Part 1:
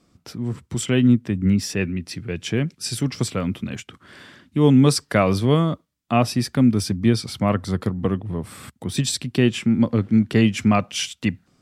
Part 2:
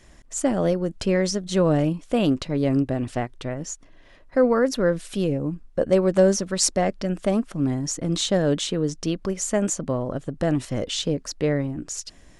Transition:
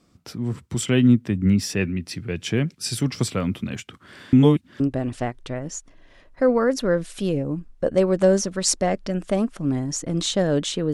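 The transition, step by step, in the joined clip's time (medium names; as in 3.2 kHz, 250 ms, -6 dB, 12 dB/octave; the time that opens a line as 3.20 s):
part 1
4.33–4.80 s: reverse
4.80 s: go over to part 2 from 2.75 s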